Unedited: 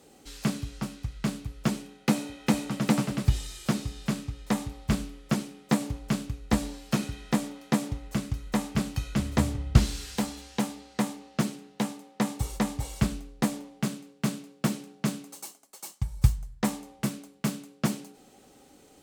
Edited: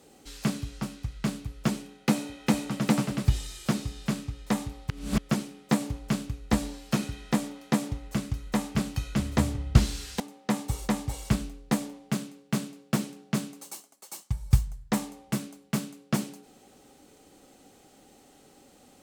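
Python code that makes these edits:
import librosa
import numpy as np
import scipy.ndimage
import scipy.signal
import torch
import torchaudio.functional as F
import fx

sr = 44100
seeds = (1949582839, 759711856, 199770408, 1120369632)

y = fx.edit(x, sr, fx.reverse_span(start_s=4.9, length_s=0.28),
    fx.cut(start_s=10.2, length_s=1.71), tone=tone)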